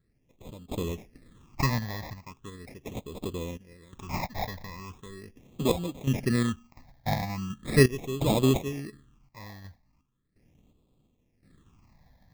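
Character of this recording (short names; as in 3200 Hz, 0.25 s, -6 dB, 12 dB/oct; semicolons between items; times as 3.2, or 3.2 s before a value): random-step tremolo 2.8 Hz, depth 90%; aliases and images of a low sample rate 1500 Hz, jitter 0%; phasing stages 8, 0.39 Hz, lowest notch 370–1800 Hz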